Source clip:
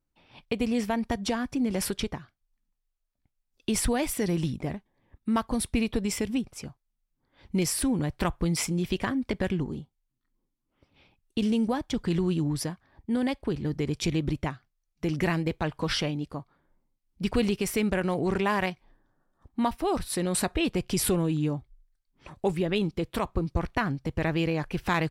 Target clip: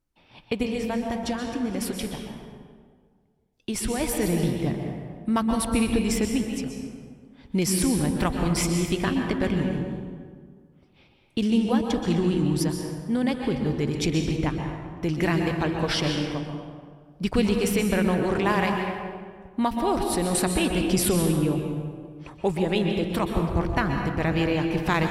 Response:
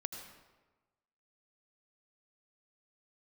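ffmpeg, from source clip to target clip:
-filter_complex "[0:a]asettb=1/sr,asplit=3[link_01][link_02][link_03];[link_01]atrim=end=0.634[link_04];[link_02]atrim=start=0.63:end=4.01,asetpts=PTS-STARTPTS,afade=type=in:duration=0.004:curve=qsin,afade=type=out:start_time=3.376:duration=0.004:curve=qsin,flanger=delay=7.6:depth=5.9:regen=80:speed=1.6:shape=triangular[link_05];[link_03]atrim=start=4.006[link_06];[link_04][link_05]acrossfade=duration=0.004:curve1=hsin:curve2=qsin[link_07];[link_07][link_06]acrossfade=duration=0.004:curve1=qsin:curve2=hsin[link_08];[1:a]atrim=start_sample=2205,asetrate=27783,aresample=44100[link_09];[link_08][link_09]afir=irnorm=-1:irlink=0,volume=2dB"

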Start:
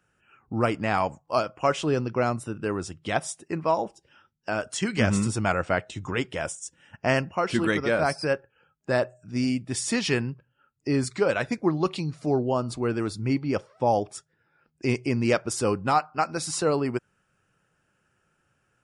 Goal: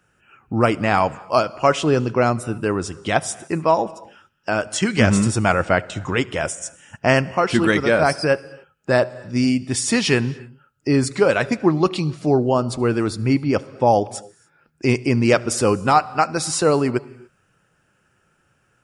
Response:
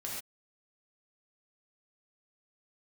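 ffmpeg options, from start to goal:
-filter_complex "[0:a]asplit=2[link_01][link_02];[1:a]atrim=start_sample=2205,asetrate=28665,aresample=44100,adelay=75[link_03];[link_02][link_03]afir=irnorm=-1:irlink=0,volume=-24dB[link_04];[link_01][link_04]amix=inputs=2:normalize=0,volume=7dB"

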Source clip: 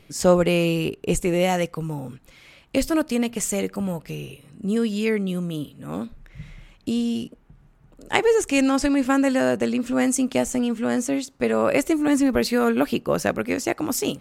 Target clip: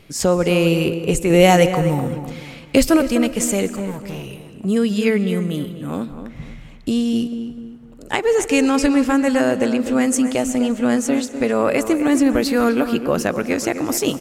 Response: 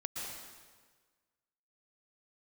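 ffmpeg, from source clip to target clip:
-filter_complex "[0:a]alimiter=limit=-10dB:level=0:latency=1:release=353,asettb=1/sr,asplit=3[link_01][link_02][link_03];[link_01]atrim=end=1.304[link_04];[link_02]atrim=start=1.3:end=2.97,asetpts=PTS-STARTPTS,afade=type=in:duration=0.004:curve=qsin,afade=type=out:start_time=1.666:duration=0.004:curve=qsin,acontrast=29[link_05];[link_03]atrim=start=2.966[link_06];[link_04][link_05]acrossfade=duration=0.004:curve1=hsin:curve2=qsin[link_07];[link_07][link_06]acrossfade=duration=0.004:curve1=qsin:curve2=hsin,asettb=1/sr,asplit=3[link_08][link_09][link_10];[link_08]atrim=end=3.754[link_11];[link_09]atrim=start=3.75:end=4.65,asetpts=PTS-STARTPTS,afade=type=in:duration=0.004:curve=qsin,afade=type=out:start_time=0.896:duration=0.004:curve=qsin,volume=32dB,asoftclip=hard,volume=-32dB[link_12];[link_10]atrim=start=4.646[link_13];[link_11][link_12]acrossfade=duration=0.004:curve1=hsin:curve2=qsin[link_14];[link_14][link_13]acrossfade=duration=0.004:curve1=qsin:curve2=hsin,asplit=2[link_15][link_16];[link_16]adelay=252,lowpass=frequency=1900:poles=1,volume=-9.5dB,asplit=2[link_17][link_18];[link_18]adelay=252,lowpass=frequency=1900:poles=1,volume=0.35,asplit=2[link_19][link_20];[link_20]adelay=252,lowpass=frequency=1900:poles=1,volume=0.35,asplit=2[link_21][link_22];[link_22]adelay=252,lowpass=frequency=1900:poles=1,volume=0.35[link_23];[link_15][link_17][link_19][link_21][link_23]amix=inputs=5:normalize=0,asplit=2[link_24][link_25];[1:a]atrim=start_sample=2205[link_26];[link_25][link_26]afir=irnorm=-1:irlink=0,volume=-15dB[link_27];[link_24][link_27]amix=inputs=2:normalize=0,volume=3.5dB"

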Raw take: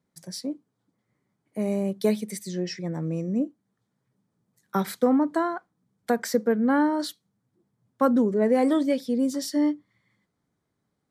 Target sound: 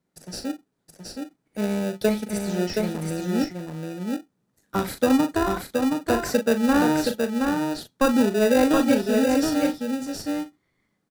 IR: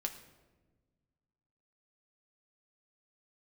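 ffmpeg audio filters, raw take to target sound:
-filter_complex "[0:a]highpass=frequency=230:poles=1,asplit=2[link_01][link_02];[link_02]adelay=39,volume=-8dB[link_03];[link_01][link_03]amix=inputs=2:normalize=0,asplit=2[link_04][link_05];[link_05]acrusher=samples=41:mix=1:aa=0.000001,volume=-3.5dB[link_06];[link_04][link_06]amix=inputs=2:normalize=0,aecho=1:1:722:0.631"

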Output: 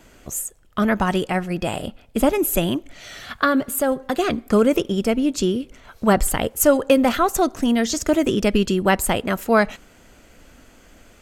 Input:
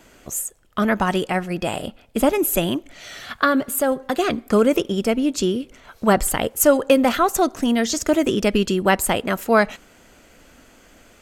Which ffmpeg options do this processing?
ffmpeg -i in.wav -af "lowshelf=frequency=140:gain=6.5,volume=-1dB" out.wav

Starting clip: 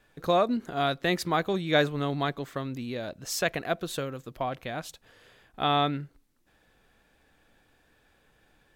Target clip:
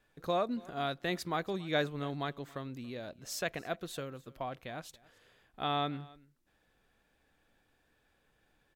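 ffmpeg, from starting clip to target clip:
ffmpeg -i in.wav -af "aecho=1:1:280:0.0708,volume=-8dB" out.wav

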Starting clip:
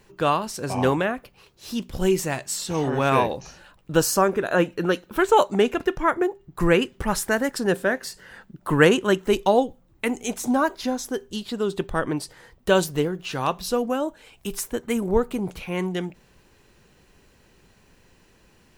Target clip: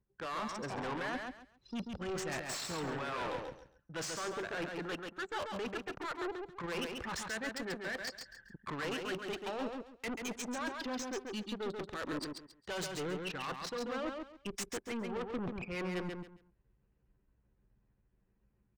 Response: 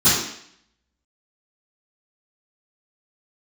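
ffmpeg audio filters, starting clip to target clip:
-filter_complex "[0:a]aeval=exprs='if(lt(val(0),0),0.251*val(0),val(0))':channel_layout=same,highpass=60,anlmdn=6.31,lowpass=frequency=7700:width=0.5412,lowpass=frequency=7700:width=1.3066,equalizer=frequency=1700:width=0.63:gain=9,acrossover=split=500|3300[link_01][link_02][link_03];[link_03]dynaudnorm=framelen=290:gausssize=31:maxgain=7dB[link_04];[link_01][link_02][link_04]amix=inputs=3:normalize=0,alimiter=limit=-7dB:level=0:latency=1:release=418,areverse,acompressor=threshold=-34dB:ratio=16,areverse,asoftclip=type=tanh:threshold=-39.5dB,aecho=1:1:137|274|411:0.596|0.137|0.0315,adynamicequalizer=threshold=0.00158:dfrequency=4000:dqfactor=0.7:tfrequency=4000:tqfactor=0.7:attack=5:release=100:ratio=0.375:range=2:mode=cutabove:tftype=highshelf,volume=4.5dB"

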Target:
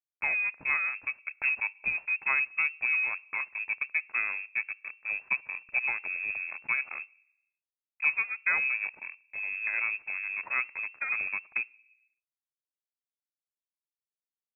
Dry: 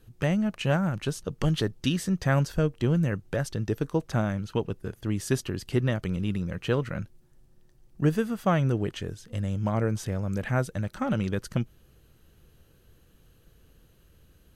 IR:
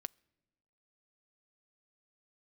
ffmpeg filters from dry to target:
-filter_complex "[0:a]aeval=exprs='sgn(val(0))*max(abs(val(0))-0.0141,0)':channel_layout=same[link_01];[1:a]atrim=start_sample=2205,asetrate=52920,aresample=44100[link_02];[link_01][link_02]afir=irnorm=-1:irlink=0,lowpass=frequency=2300:width_type=q:width=0.5098,lowpass=frequency=2300:width_type=q:width=0.6013,lowpass=frequency=2300:width_type=q:width=0.9,lowpass=frequency=2300:width_type=q:width=2.563,afreqshift=-2700,volume=2.5dB"

